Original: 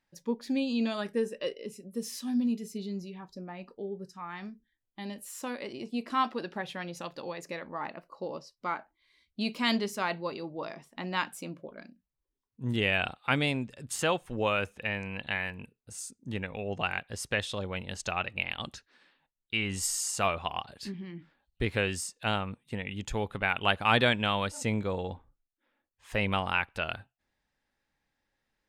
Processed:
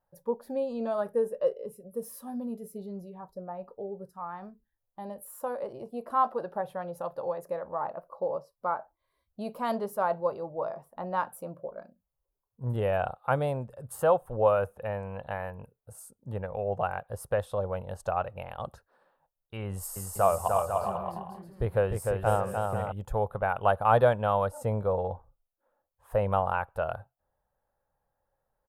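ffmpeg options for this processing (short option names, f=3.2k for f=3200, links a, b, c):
-filter_complex "[0:a]asettb=1/sr,asplit=3[a][b][c];[a]atrim=end=19.664[d];[b]atrim=start=19.66:end=22.92,asetpts=PTS-STARTPTS,afade=t=in:d=0.004:c=qsin,afade=t=out:st=3.256:d=0.004:c=qsin,aecho=1:1:300|495|621.8|704.1|757.7|792.5:0.631|0.398|0.251|0.158|0.1|0.0631,atrim=end_sample=143766[e];[c]atrim=start=22.916[f];[d][e]acrossfade=d=0.004:c1=hsin:c2=qsin[g];[g][f]acrossfade=d=0.004:c1=qsin:c2=hsin,firequalizer=gain_entry='entry(120,0);entry(270,-13);entry(530,6);entry(1400,-4);entry(2100,-21);entry(6600,-20);entry(11000,0)':delay=0.05:min_phase=1,volume=3dB"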